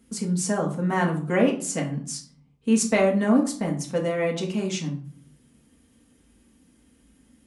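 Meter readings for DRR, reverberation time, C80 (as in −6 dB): −1.5 dB, 0.45 s, 14.5 dB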